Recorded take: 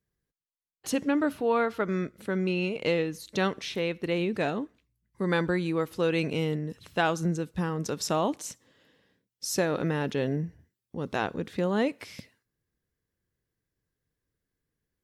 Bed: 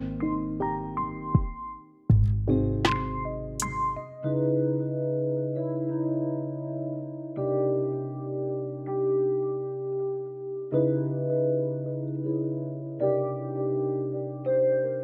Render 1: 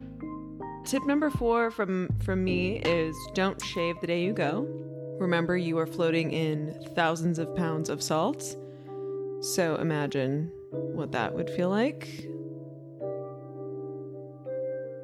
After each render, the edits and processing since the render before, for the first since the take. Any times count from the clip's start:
mix in bed −10 dB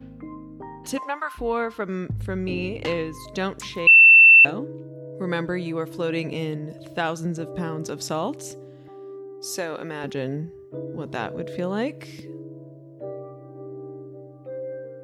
0:00.97–0:01.37: high-pass with resonance 610 Hz → 1,500 Hz, resonance Q 2.7
0:03.87–0:04.45: beep over 2,680 Hz −7 dBFS
0:08.88–0:10.04: high-pass filter 460 Hz 6 dB per octave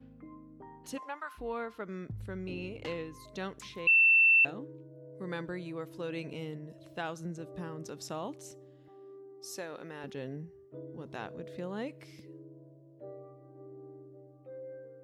level −12 dB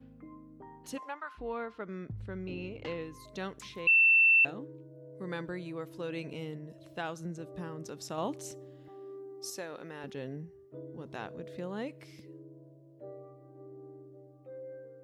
0:01.14–0:03.02: high-frequency loss of the air 92 metres
0:08.18–0:09.50: clip gain +5 dB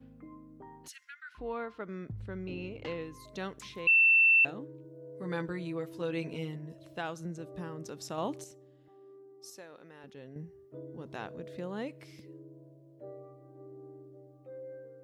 0:00.88–0:01.35: Chebyshev high-pass with heavy ripple 1,400 Hz, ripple 3 dB
0:04.83–0:06.75: double-tracking delay 12 ms −4 dB
0:08.44–0:10.36: clip gain −8.5 dB

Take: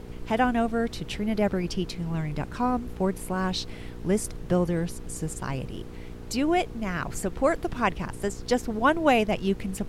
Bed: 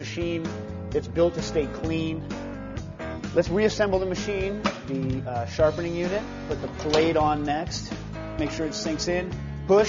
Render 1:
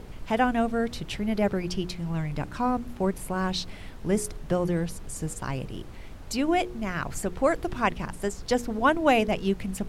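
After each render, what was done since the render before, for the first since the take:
hum removal 60 Hz, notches 8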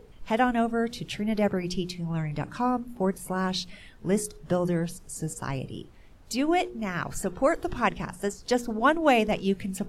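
noise reduction from a noise print 11 dB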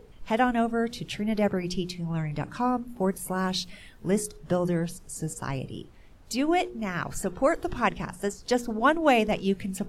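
0:02.97–0:04.11: high-shelf EQ 11,000 Hz +10 dB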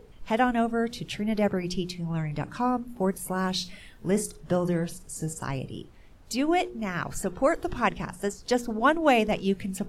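0:03.56–0:05.46: flutter between parallel walls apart 7.6 metres, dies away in 0.2 s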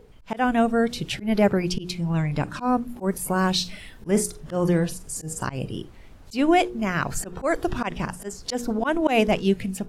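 automatic gain control gain up to 6 dB
volume swells 124 ms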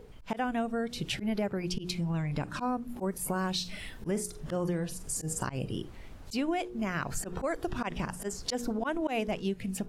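downward compressor 4 to 1, threshold −30 dBFS, peak gain reduction 14.5 dB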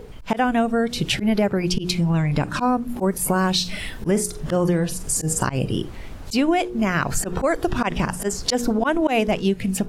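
level +11.5 dB

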